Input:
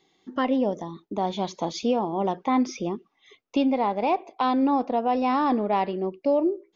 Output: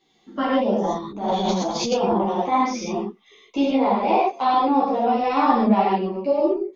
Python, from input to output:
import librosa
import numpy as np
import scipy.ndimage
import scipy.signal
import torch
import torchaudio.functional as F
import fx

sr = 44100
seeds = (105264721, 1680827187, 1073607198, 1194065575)

y = fx.rev_gated(x, sr, seeds[0], gate_ms=170, shape='flat', drr_db=-5.0)
y = fx.transient(y, sr, attack_db=-10, sustain_db=10, at=(0.82, 2.25), fade=0.02)
y = fx.ensemble(y, sr)
y = y * 10.0 ** (1.5 / 20.0)